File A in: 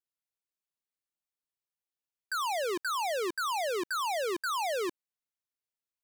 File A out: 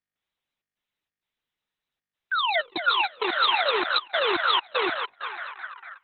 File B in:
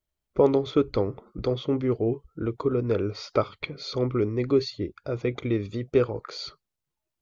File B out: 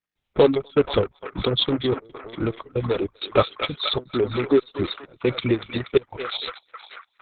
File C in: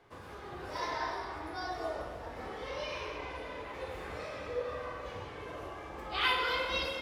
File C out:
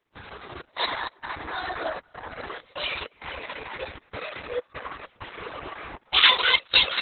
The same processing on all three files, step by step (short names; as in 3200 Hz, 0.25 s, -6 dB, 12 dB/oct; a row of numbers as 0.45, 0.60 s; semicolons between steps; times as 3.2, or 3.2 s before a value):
in parallel at -10 dB: wavefolder -24 dBFS; on the sum: reverb removal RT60 0.59 s; dynamic EQ 3800 Hz, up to +7 dB, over -51 dBFS, Q 2.5; reverb removal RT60 1.1 s; high shelf 2100 Hz +9 dB; on a send: narrowing echo 0.24 s, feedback 80%, band-pass 1500 Hz, level -6.5 dB; on the sum: step gate ".xxx.xx.xxxxx" 98 bpm -24 dB; hard clip -10 dBFS; Opus 6 kbps 48000 Hz; match loudness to -24 LUFS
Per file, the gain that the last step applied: +2.5, +4.5, +5.0 dB